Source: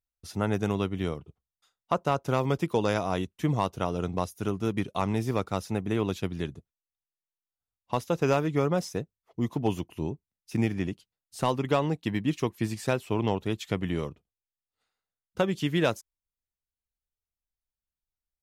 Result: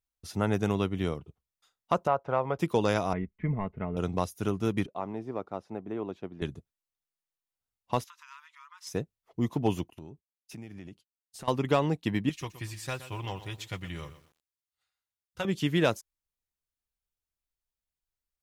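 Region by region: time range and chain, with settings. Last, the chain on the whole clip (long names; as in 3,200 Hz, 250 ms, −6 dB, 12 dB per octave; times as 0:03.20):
0:02.07–0:02.59: low-pass filter 1,600 Hz + low shelf with overshoot 430 Hz −8 dB, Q 1.5
0:03.13–0:03.97: transistor ladder low-pass 2,200 Hz, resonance 80% + spectral tilt −4 dB per octave + comb filter 4.7 ms, depth 50%
0:04.86–0:06.42: resonant band-pass 520 Hz, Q 1.3 + parametric band 490 Hz −6.5 dB 0.65 octaves
0:08.04–0:08.87: high-shelf EQ 6,700 Hz −8.5 dB + downward compressor 12 to 1, threshold −35 dBFS + linear-phase brick-wall high-pass 900 Hz
0:09.90–0:11.48: downward expander −47 dBFS + downward compressor 4 to 1, threshold −43 dBFS
0:12.29–0:15.45: parametric band 320 Hz −14 dB 2.4 octaves + notch comb filter 220 Hz + feedback echo at a low word length 121 ms, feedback 35%, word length 9 bits, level −13 dB
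whole clip: no processing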